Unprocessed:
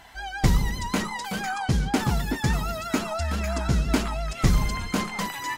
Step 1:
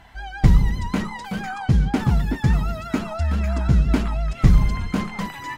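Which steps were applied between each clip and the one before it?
tone controls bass +8 dB, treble -8 dB; trim -1 dB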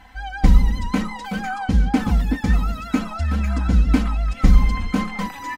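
comb 3.9 ms, depth 83%; trim -1 dB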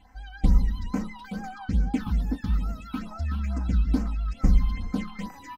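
phase shifter stages 6, 2.3 Hz, lowest notch 500–3500 Hz; trim -8 dB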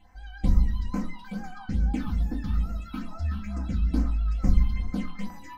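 simulated room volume 120 m³, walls furnished, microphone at 0.87 m; trim -3.5 dB

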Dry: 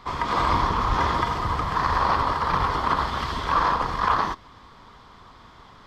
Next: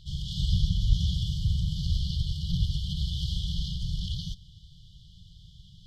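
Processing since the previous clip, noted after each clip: FFT band-reject 190–2900 Hz; treble shelf 3.4 kHz -7.5 dB; trim +4 dB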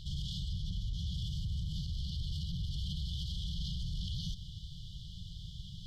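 reverse; compression 5:1, threshold -33 dBFS, peak gain reduction 15 dB; reverse; peak limiter -35.5 dBFS, peak gain reduction 11.5 dB; trim +5.5 dB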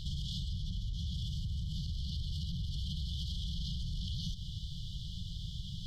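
compression, threshold -39 dBFS, peak gain reduction 6.5 dB; trim +5 dB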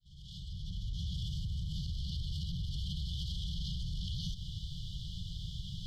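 fade-in on the opening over 0.94 s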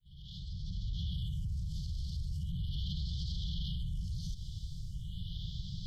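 phase shifter stages 4, 0.39 Hz, lowest notch 370–2200 Hz

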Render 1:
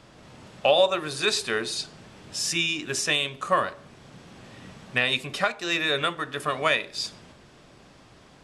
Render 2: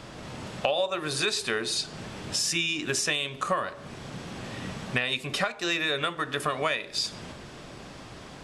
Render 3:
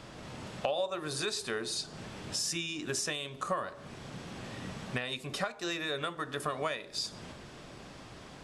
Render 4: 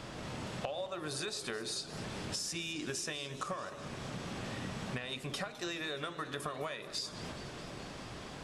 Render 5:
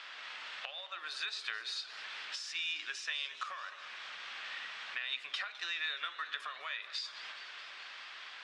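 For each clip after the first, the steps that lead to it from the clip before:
compression 4:1, threshold -35 dBFS, peak gain reduction 16.5 dB; trim +8.5 dB
dynamic bell 2.5 kHz, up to -6 dB, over -43 dBFS, Q 1.2; trim -5 dB
compression, threshold -39 dBFS, peak gain reduction 12 dB; modulated delay 211 ms, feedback 78%, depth 191 cents, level -16.5 dB; trim +3 dB
Butterworth band-pass 2.4 kHz, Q 0.89; trim +5 dB

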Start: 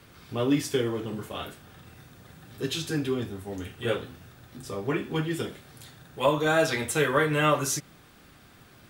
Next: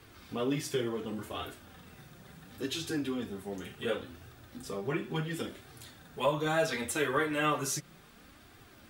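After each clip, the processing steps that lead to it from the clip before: flange 0.7 Hz, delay 2.4 ms, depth 3.4 ms, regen -27%; in parallel at -1 dB: compression, threshold -37 dBFS, peak gain reduction 16 dB; on the sum: trim -4 dB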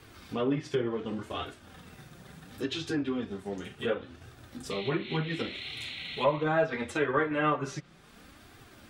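painted sound noise, 4.70–6.44 s, 1.9–4.3 kHz -43 dBFS; transient shaper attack 0 dB, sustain -4 dB; low-pass that closes with the level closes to 2 kHz, closed at -28 dBFS; trim +3 dB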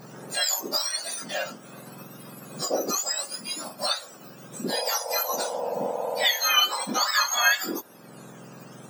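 spectrum inverted on a logarithmic axis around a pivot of 1.4 kHz; trim +9 dB

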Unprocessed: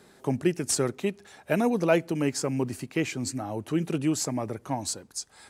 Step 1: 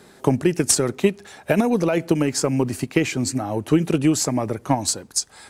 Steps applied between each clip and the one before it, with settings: peak limiter -18 dBFS, peak gain reduction 9.5 dB; transient shaper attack +7 dB, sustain +2 dB; trim +6.5 dB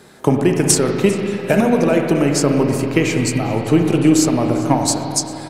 feedback delay 398 ms, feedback 45%, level -19.5 dB; on a send at -2 dB: reverberation RT60 2.9 s, pre-delay 35 ms; on the sum: trim +3 dB

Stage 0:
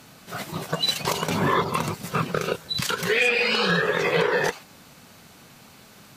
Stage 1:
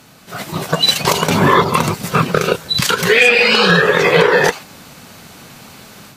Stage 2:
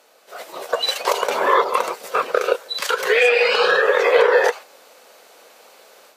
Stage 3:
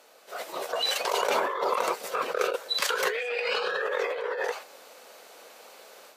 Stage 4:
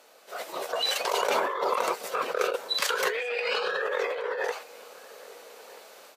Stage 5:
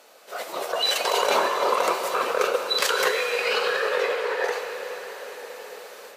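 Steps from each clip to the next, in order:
level rider gain up to 7.5 dB; trim +3.5 dB
dynamic bell 1.3 kHz, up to +5 dB, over -25 dBFS, Q 0.75; ladder high-pass 440 Hz, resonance 55%
compressor with a negative ratio -22 dBFS, ratio -1; trim -6 dB
echo from a far wall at 220 m, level -19 dB
reverberation RT60 5.6 s, pre-delay 6 ms, DRR 4.5 dB; trim +3.5 dB

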